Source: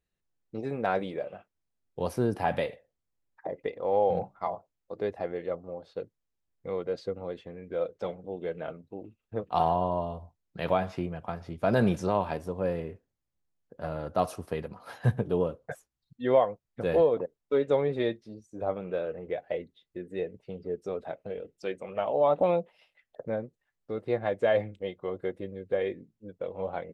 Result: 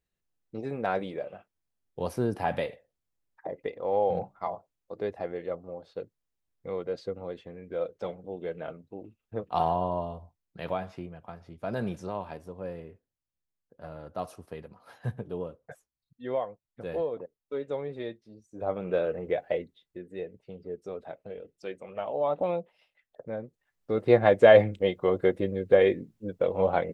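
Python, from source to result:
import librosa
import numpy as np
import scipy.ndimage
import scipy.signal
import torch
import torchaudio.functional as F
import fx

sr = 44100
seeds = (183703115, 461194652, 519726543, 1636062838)

y = fx.gain(x, sr, db=fx.line((9.98, -1.0), (11.16, -8.0), (18.25, -8.0), (18.93, 4.5), (19.44, 4.5), (20.08, -4.0), (23.32, -4.0), (24.11, 9.0)))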